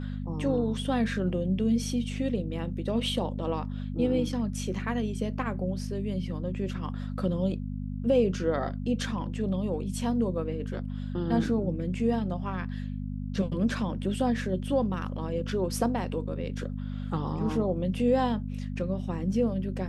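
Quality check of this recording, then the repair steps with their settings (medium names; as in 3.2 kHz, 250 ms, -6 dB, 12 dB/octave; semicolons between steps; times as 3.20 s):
hum 50 Hz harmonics 5 -34 dBFS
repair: de-hum 50 Hz, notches 5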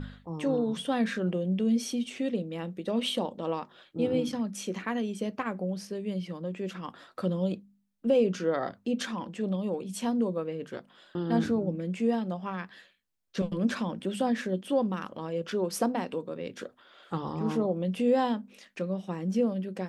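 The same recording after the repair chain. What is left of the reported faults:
nothing left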